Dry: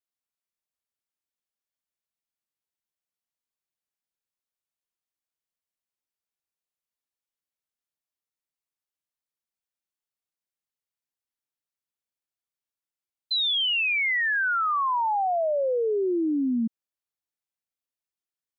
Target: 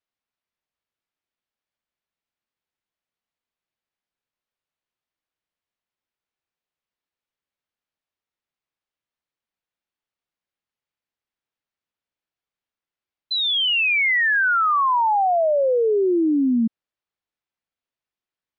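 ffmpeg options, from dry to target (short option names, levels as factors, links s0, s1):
-af "lowpass=3600,volume=2"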